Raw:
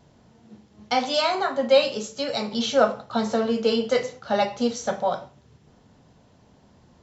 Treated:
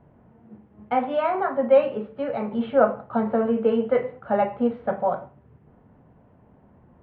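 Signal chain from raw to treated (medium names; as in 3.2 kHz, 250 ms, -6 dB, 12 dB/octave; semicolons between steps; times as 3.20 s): Bessel low-pass 1.4 kHz, order 8; trim +1.5 dB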